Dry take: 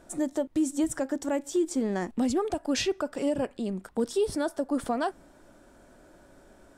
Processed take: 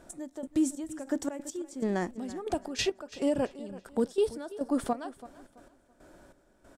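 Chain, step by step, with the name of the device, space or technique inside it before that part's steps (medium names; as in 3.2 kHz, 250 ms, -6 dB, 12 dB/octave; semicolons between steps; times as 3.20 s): trance gate with a delay (trance gate "x...xxx...xx." 140 bpm -12 dB; feedback delay 333 ms, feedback 29%, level -17 dB)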